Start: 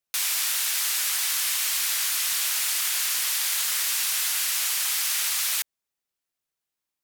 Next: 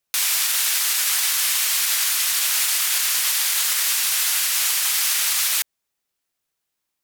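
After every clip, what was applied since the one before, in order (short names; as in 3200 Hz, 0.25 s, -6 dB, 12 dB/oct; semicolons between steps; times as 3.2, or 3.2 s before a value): limiter -17 dBFS, peak gain reduction 4 dB; gain +6.5 dB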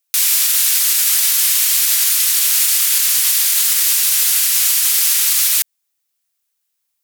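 tilt +3 dB/oct; gain -3 dB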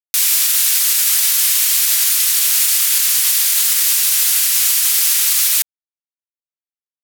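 bit-crush 8-bit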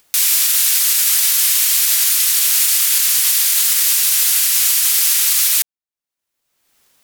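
upward compressor, threshold -27 dBFS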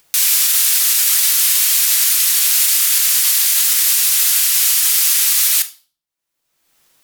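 reverb, pre-delay 6 ms, DRR 8 dB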